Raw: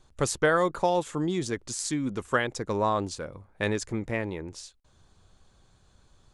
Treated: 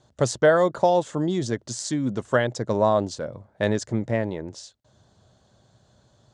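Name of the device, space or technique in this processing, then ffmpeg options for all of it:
car door speaker: -af "highpass=91,equalizer=f=120:t=q:w=4:g=8,equalizer=f=220:t=q:w=4:g=4,equalizer=f=620:t=q:w=4:g=9,equalizer=f=1.2k:t=q:w=4:g=-4,equalizer=f=2.4k:t=q:w=4:g=-8,lowpass=f=7.7k:w=0.5412,lowpass=f=7.7k:w=1.3066,volume=2.5dB"

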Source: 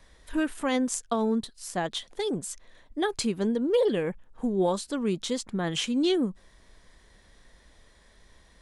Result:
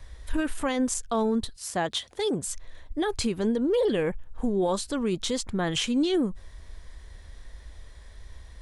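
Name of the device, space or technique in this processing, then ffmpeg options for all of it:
car stereo with a boomy subwoofer: -filter_complex "[0:a]lowshelf=f=120:t=q:w=1.5:g=10,alimiter=limit=-21.5dB:level=0:latency=1:release=20,asettb=1/sr,asplit=3[a][b][c];[a]atrim=end=1.564[d];[b]atrim=start=1.56:end=2.45,asetpts=PTS-STARTPTS,afade=t=in:d=0.004:c=qsin,afade=t=out:st=0.886:d=0.004:c=qsin,highpass=88[e];[c]atrim=start=2.446[f];[d][e]acrossfade=d=0.004:c1=hsin:c2=qsin[g];[g][f]acrossfade=d=0.004:c1=qsin:c2=hsin,volume=3.5dB"

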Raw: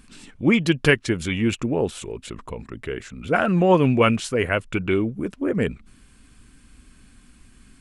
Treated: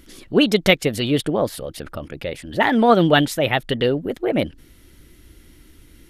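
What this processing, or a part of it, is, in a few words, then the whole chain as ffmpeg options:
nightcore: -af "asetrate=56448,aresample=44100,volume=2.5dB"

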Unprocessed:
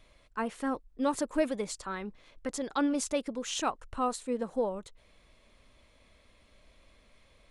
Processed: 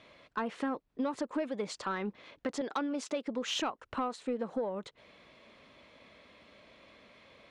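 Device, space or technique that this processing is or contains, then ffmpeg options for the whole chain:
AM radio: -filter_complex "[0:a]highpass=160,lowpass=4k,acompressor=threshold=-37dB:ratio=8,asoftclip=type=tanh:threshold=-30dB,asettb=1/sr,asplit=3[a][b][c];[a]atrim=end=2.614[d];[b]atrim=start=2.61:end=3.24,asetpts=PTS-STARTPTS,afade=t=in:d=0.004:c=qsin,afade=t=out:st=0.626:d=0.004:c=qsin,highpass=230[e];[c]atrim=start=3.236[f];[d][e]acrossfade=d=0.004:c1=hsin:c2=qsin[g];[g][f]acrossfade=d=0.004:c1=qsin:c2=hsin,volume=7.5dB"

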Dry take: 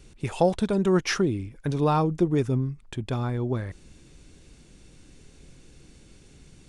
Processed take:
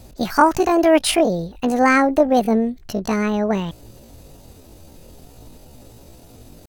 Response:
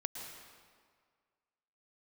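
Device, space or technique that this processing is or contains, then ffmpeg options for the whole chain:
chipmunk voice: -af "asetrate=76340,aresample=44100,atempo=0.577676,volume=7.5dB"

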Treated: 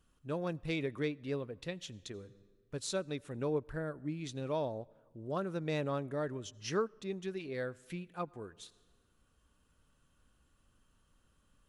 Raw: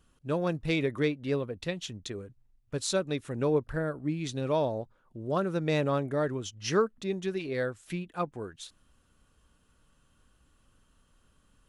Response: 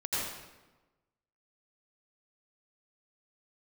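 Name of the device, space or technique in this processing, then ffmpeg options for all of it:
ducked reverb: -filter_complex "[0:a]asplit=3[a][b][c];[1:a]atrim=start_sample=2205[d];[b][d]afir=irnorm=-1:irlink=0[e];[c]apad=whole_len=515391[f];[e][f]sidechaincompress=threshold=-46dB:ratio=16:attack=16:release=947,volume=-11.5dB[g];[a][g]amix=inputs=2:normalize=0,volume=-7.5dB"

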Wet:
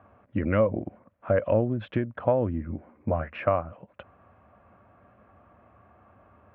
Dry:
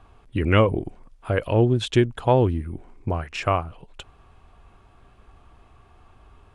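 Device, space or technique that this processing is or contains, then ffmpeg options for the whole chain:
bass amplifier: -filter_complex "[0:a]asettb=1/sr,asplit=3[a][b][c];[a]atrim=end=2.674[d];[b]atrim=start=2.67:end=3.45,asetpts=PTS-STARTPTS,afade=t=in:d=0.004:c=qsin,afade=t=out:st=0.776:d=0.004:c=qsin,asplit=2[e][f];[f]adelay=13,volume=-6dB[g];[e][g]amix=inputs=2:normalize=0,atrim=end_sample=34398[h];[c]atrim=start=3.446[i];[d][h]acrossfade=d=0.004:c1=hsin:c2=qsin[j];[j][i]acrossfade=d=0.004:c1=qsin:c2=hsin,acompressor=threshold=-21dB:ratio=5,highpass=f=90:w=0.5412,highpass=f=90:w=1.3066,equalizer=f=140:t=q:w=4:g=-7,equalizer=f=210:t=q:w=4:g=5,equalizer=f=400:t=q:w=4:g=-8,equalizer=f=570:t=q:w=4:g=10,equalizer=f=860:t=q:w=4:g=-4,lowpass=f=2k:w=0.5412,lowpass=f=2k:w=1.3066"

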